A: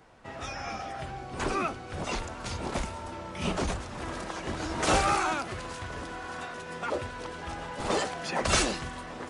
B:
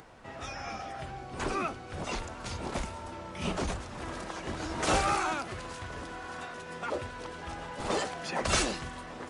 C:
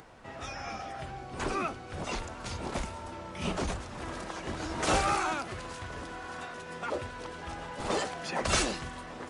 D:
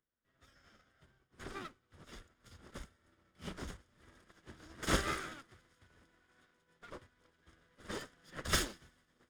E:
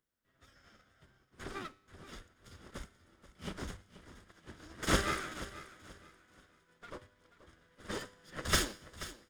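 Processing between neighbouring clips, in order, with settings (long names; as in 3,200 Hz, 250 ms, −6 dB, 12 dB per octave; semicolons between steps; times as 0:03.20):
upward compression, threshold −44 dBFS; level −2.5 dB
no processing that can be heard
lower of the sound and its delayed copy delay 0.59 ms; feedback echo with a high-pass in the loop 92 ms, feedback 84%, level −20 dB; expander for the loud parts 2.5 to 1, over −50 dBFS; level −1 dB
tuned comb filter 100 Hz, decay 0.7 s, harmonics all, mix 40%; repeating echo 482 ms, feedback 29%, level −15 dB; level +6.5 dB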